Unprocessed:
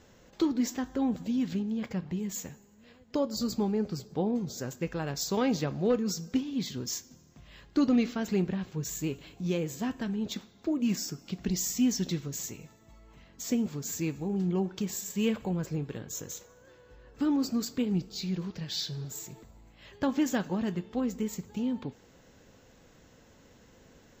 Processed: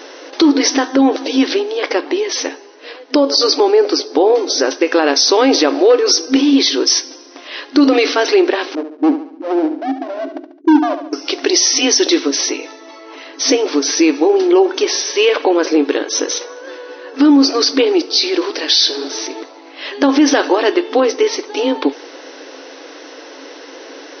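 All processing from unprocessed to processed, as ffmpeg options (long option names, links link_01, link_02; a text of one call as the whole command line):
ffmpeg -i in.wav -filter_complex "[0:a]asettb=1/sr,asplit=3[link_01][link_02][link_03];[link_01]atrim=end=8.754[link_04];[link_02]atrim=start=8.75:end=11.13,asetpts=PTS-STARTPTS,afade=type=in:duration=0.004:curve=qsin,afade=type=out:start_time=2.376:duration=0.004:curve=qsin,asuperpass=centerf=190:order=12:qfactor=0.79,volume=32dB,asoftclip=hard,volume=-32dB,aecho=1:1:71|142|213|284|355:0.316|0.149|0.0699|0.0328|0.0154,atrim=end_sample=104958[link_05];[link_03]atrim=start=11.126[link_06];[link_04][link_05]acrossfade=duration=0.004:curve1=hsin:curve2=qsin[link_07];[link_07][link_06]acrossfade=duration=0.004:curve1=qsin:curve2=hsin,afftfilt=real='re*between(b*sr/4096,260,6200)':imag='im*between(b*sr/4096,260,6200)':win_size=4096:overlap=0.75,equalizer=frequency=4800:width_type=o:width=0.77:gain=2.5,alimiter=level_in=28dB:limit=-1dB:release=50:level=0:latency=1,volume=-2dB" out.wav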